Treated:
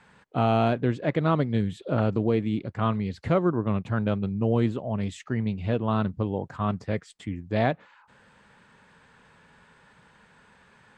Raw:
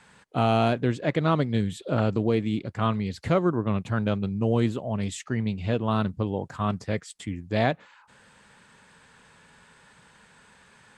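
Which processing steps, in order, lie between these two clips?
low-pass filter 2,500 Hz 6 dB per octave

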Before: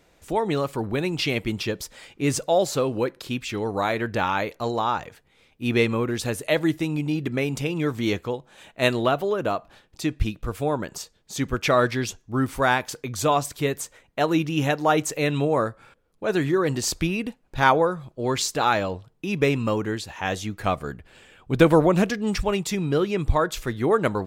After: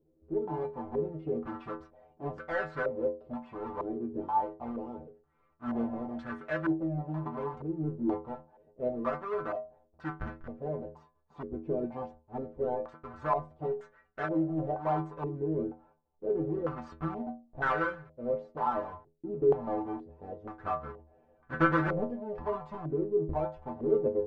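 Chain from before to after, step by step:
each half-wave held at its own peak
stiff-string resonator 76 Hz, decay 0.41 s, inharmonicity 0.008
low-pass on a step sequencer 2.1 Hz 380–1,500 Hz
level −8 dB

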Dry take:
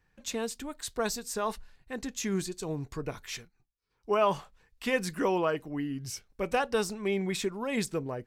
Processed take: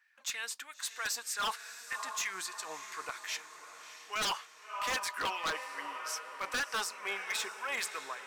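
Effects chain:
auto-filter high-pass sine 3.2 Hz 980–2,000 Hz
feedback delay with all-pass diffusion 630 ms, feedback 55%, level −12 dB
wave folding −27 dBFS

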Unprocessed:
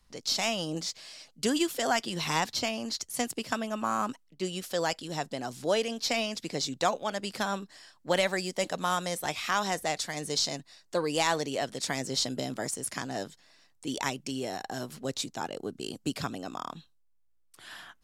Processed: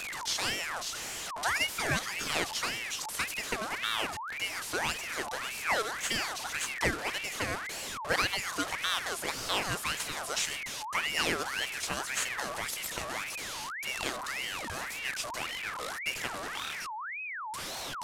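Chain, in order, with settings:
linear delta modulator 64 kbit/s, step −29.5 dBFS
ring modulator whose carrier an LFO sweeps 1,700 Hz, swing 50%, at 1.8 Hz

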